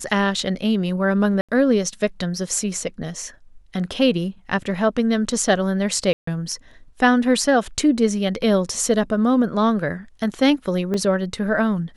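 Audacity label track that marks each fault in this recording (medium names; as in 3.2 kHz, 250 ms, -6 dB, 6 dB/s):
1.410000	1.490000	dropout 76 ms
6.130000	6.270000	dropout 144 ms
10.940000	10.940000	dropout 2.8 ms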